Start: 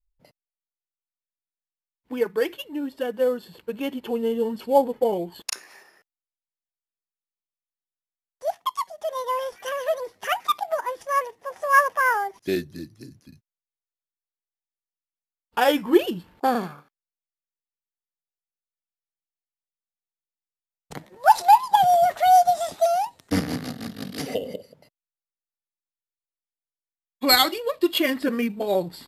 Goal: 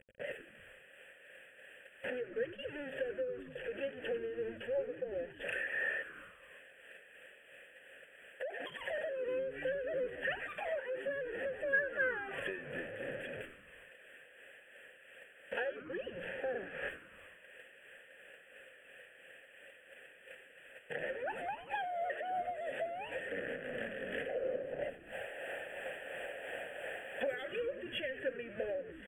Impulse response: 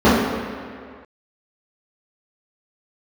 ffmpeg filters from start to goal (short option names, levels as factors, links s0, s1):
-filter_complex "[0:a]aeval=exprs='val(0)+0.5*0.0596*sgn(val(0))':c=same,asplit=3[s0][s1][s2];[s0]bandpass=f=530:t=q:w=8,volume=1[s3];[s1]bandpass=f=1840:t=q:w=8,volume=0.501[s4];[s2]bandpass=f=2480:t=q:w=8,volume=0.355[s5];[s3][s4][s5]amix=inputs=3:normalize=0,asettb=1/sr,asplit=3[s6][s7][s8];[s6]atrim=end=24.294[s9];[s7]atrim=start=24.29:end=27.27,asetpts=PTS-STARTPTS,afade=t=in:d=0.004:c=qsin,afade=t=out:st=2.976:d=0.004:c=qsin,equalizer=f=730:t=o:w=0.92:g=14[s10];[s8]atrim=start=27.266[s11];[s9][s10]acrossfade=d=0.004:c1=hsin:c2=qsin[s12];[s12][s11]acrossfade=d=0.004:c1=qsin:c2=hsin,asuperstop=centerf=5100:order=20:qfactor=1.2,acompressor=threshold=0.00562:ratio=4,agate=range=0.316:threshold=0.00224:ratio=16:detection=peak,equalizer=f=315:t=o:w=0.33:g=-9,equalizer=f=1600:t=o:w=0.33:g=9,equalizer=f=12500:t=o:w=0.33:g=-6,asplit=7[s13][s14][s15][s16][s17][s18][s19];[s14]adelay=95,afreqshift=-120,volume=0.2[s20];[s15]adelay=190,afreqshift=-240,volume=0.116[s21];[s16]adelay=285,afreqshift=-360,volume=0.0668[s22];[s17]adelay=380,afreqshift=-480,volume=0.0389[s23];[s18]adelay=475,afreqshift=-600,volume=0.0226[s24];[s19]adelay=570,afreqshift=-720,volume=0.013[s25];[s13][s20][s21][s22][s23][s24][s25]amix=inputs=7:normalize=0,tremolo=f=2.9:d=0.42,volume=2.51"